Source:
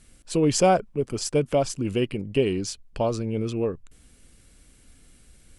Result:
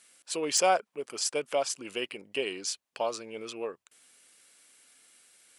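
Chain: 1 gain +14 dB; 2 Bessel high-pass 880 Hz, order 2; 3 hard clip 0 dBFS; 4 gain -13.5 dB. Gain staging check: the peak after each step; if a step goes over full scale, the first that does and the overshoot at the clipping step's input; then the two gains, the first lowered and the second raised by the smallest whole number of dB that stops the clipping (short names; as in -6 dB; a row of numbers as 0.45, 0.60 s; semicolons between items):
+6.0, +6.0, 0.0, -13.5 dBFS; step 1, 6.0 dB; step 1 +8 dB, step 4 -7.5 dB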